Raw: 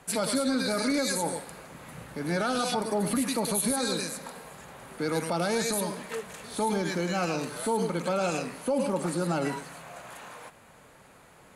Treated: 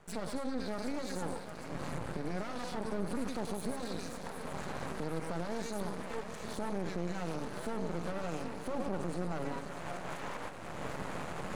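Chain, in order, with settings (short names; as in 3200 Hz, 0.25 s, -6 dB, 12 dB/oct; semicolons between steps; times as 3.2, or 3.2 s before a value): recorder AGC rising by 29 dB/s; Chebyshev low-pass 5400 Hz, order 2; bell 170 Hz +3 dB; limiter -24.5 dBFS, peak gain reduction 6.5 dB; bell 3600 Hz -9.5 dB 2.3 oct; thinning echo 0.764 s, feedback 70%, high-pass 300 Hz, level -9 dB; half-wave rectifier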